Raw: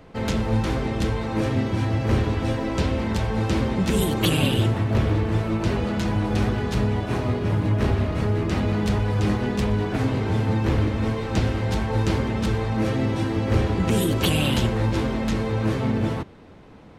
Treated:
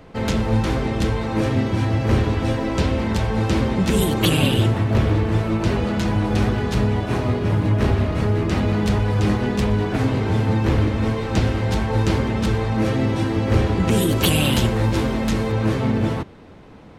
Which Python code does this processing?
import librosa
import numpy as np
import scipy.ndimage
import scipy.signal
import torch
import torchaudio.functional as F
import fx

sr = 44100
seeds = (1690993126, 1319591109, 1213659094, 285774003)

y = fx.high_shelf(x, sr, hz=9200.0, db=8.0, at=(14.09, 15.52))
y = y * librosa.db_to_amplitude(3.0)